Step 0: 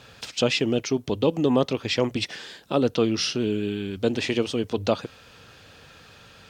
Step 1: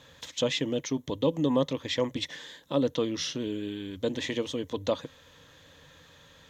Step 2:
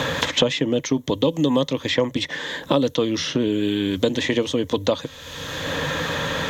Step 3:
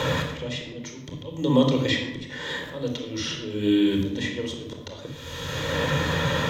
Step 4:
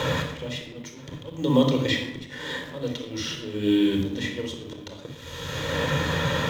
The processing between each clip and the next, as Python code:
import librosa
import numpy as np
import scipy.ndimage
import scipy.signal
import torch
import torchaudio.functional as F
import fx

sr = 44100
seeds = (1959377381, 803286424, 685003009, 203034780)

y1 = fx.ripple_eq(x, sr, per_octave=1.1, db=9)
y1 = y1 * librosa.db_to_amplitude(-6.5)
y2 = fx.band_squash(y1, sr, depth_pct=100)
y2 = y2 * librosa.db_to_amplitude(8.0)
y3 = fx.auto_swell(y2, sr, attack_ms=331.0)
y3 = fx.room_shoebox(y3, sr, seeds[0], volume_m3=3200.0, walls='furnished', distance_m=4.6)
y3 = y3 * librosa.db_to_amplitude(-5.0)
y4 = fx.law_mismatch(y3, sr, coded='A')
y4 = y4 + 10.0 ** (-23.5 / 20.0) * np.pad(y4, (int(981 * sr / 1000.0), 0))[:len(y4)]